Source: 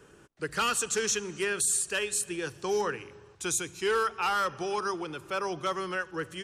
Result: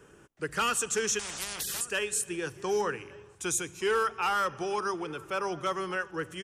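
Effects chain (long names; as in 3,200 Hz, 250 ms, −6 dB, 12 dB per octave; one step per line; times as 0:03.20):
parametric band 4,200 Hz −7 dB 0.41 octaves
slap from a distant wall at 200 metres, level −20 dB
0:01.19–0:01.81: every bin compressed towards the loudest bin 10 to 1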